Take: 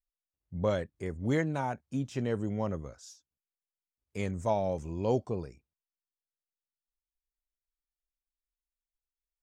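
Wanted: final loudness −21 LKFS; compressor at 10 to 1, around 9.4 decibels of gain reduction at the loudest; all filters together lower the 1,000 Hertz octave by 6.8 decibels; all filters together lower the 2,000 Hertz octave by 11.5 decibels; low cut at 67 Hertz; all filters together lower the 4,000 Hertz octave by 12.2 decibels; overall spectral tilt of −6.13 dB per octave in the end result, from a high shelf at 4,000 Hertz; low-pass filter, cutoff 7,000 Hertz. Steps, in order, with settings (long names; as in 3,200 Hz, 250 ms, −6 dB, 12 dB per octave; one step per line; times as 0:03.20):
high-pass filter 67 Hz
low-pass filter 7,000 Hz
parametric band 1,000 Hz −7 dB
parametric band 2,000 Hz −8.5 dB
high-shelf EQ 4,000 Hz −8 dB
parametric band 4,000 Hz −7.5 dB
downward compressor 10 to 1, threshold −34 dBFS
level +20 dB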